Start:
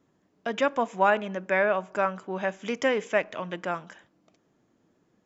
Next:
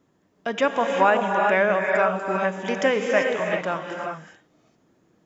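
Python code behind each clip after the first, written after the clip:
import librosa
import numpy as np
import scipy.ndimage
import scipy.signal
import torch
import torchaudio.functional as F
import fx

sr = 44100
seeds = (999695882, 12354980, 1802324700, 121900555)

y = fx.rev_gated(x, sr, seeds[0], gate_ms=420, shape='rising', drr_db=1.5)
y = y * librosa.db_to_amplitude(3.0)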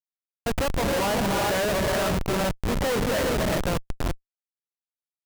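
y = fx.schmitt(x, sr, flips_db=-23.5)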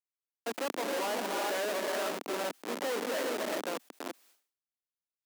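y = scipy.signal.sosfilt(scipy.signal.butter(6, 250.0, 'highpass', fs=sr, output='sos'), x)
y = fx.sustainer(y, sr, db_per_s=130.0)
y = y * librosa.db_to_amplitude(-8.0)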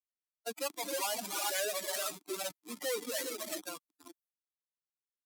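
y = fx.bin_expand(x, sr, power=3.0)
y = fx.peak_eq(y, sr, hz=11000.0, db=13.5, octaves=2.6)
y = y * librosa.db_to_amplitude(1.5)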